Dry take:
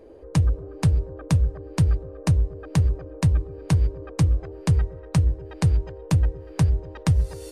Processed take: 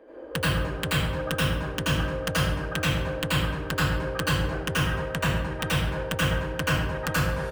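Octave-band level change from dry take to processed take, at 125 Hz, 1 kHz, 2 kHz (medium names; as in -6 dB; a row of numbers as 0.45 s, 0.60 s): -6.5 dB, +8.0 dB, +14.0 dB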